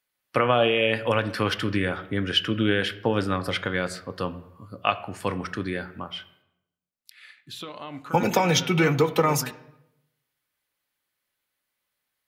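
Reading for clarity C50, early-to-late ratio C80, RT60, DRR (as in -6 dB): 15.5 dB, 17.5 dB, 0.85 s, 9.0 dB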